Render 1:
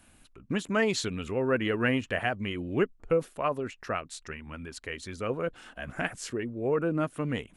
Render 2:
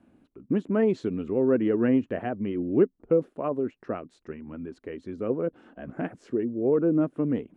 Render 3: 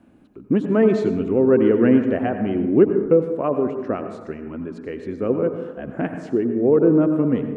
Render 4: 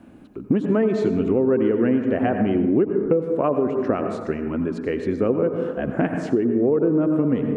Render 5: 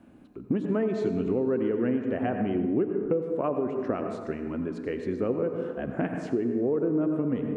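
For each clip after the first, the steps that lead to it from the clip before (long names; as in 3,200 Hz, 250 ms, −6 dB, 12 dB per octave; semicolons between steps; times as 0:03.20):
resonant band-pass 300 Hz, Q 1.4; level +8 dB
dense smooth reverb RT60 1.1 s, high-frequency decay 0.35×, pre-delay 75 ms, DRR 7 dB; level +6.5 dB
downward compressor 6 to 1, threshold −23 dBFS, peak gain reduction 14 dB; level +6.5 dB
tuned comb filter 61 Hz, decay 1.7 s, harmonics all, mix 60%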